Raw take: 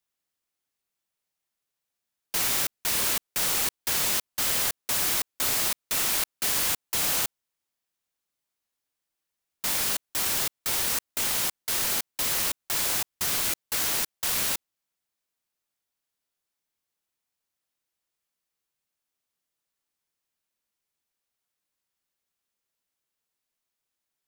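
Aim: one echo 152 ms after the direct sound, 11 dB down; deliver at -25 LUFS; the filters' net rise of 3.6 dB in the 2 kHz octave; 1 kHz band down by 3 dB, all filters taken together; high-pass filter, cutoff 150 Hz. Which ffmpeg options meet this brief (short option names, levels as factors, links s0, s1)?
-af "highpass=150,equalizer=f=1000:t=o:g=-6,equalizer=f=2000:t=o:g=6,aecho=1:1:152:0.282,volume=0.891"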